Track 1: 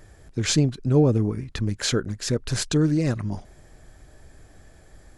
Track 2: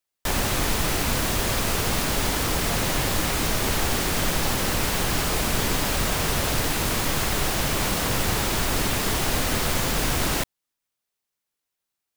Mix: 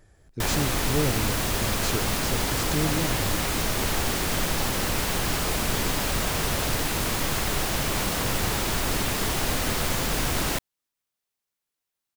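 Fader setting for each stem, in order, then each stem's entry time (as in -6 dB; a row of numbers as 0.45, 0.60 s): -8.0, -2.0 dB; 0.00, 0.15 s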